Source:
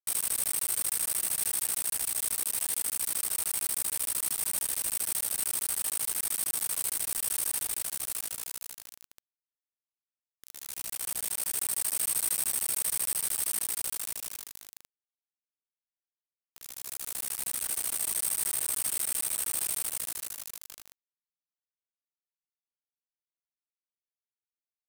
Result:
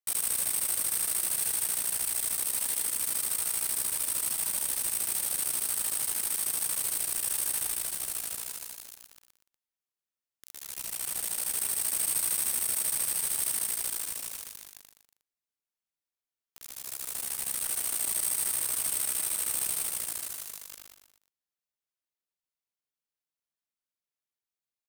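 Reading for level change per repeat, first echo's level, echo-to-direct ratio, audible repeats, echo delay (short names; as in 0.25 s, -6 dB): -7.0 dB, -7.5 dB, -6.5 dB, 3, 0.12 s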